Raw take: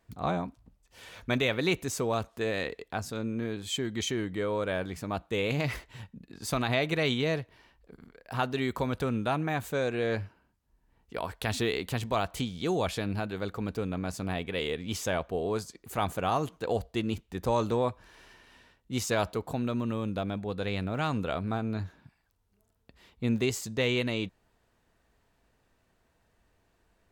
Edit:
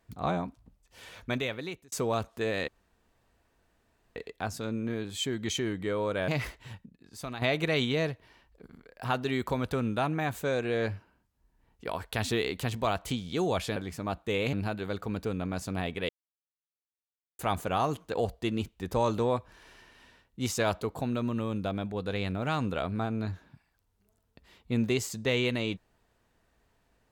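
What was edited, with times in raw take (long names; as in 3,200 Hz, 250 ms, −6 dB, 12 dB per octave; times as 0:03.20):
0:01.08–0:01.92: fade out
0:02.68: splice in room tone 1.48 s
0:04.80–0:05.57: move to 0:13.05
0:06.15–0:06.71: clip gain −9 dB
0:14.61–0:15.91: silence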